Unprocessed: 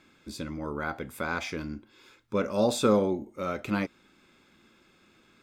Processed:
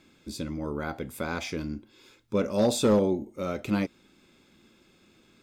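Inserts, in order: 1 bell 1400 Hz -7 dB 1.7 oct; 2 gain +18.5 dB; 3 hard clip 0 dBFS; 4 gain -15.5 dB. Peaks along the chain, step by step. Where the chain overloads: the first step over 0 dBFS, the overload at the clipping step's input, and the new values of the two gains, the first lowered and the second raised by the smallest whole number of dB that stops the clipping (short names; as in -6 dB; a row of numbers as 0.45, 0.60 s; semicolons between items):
-12.5, +6.0, 0.0, -15.5 dBFS; step 2, 6.0 dB; step 2 +12.5 dB, step 4 -9.5 dB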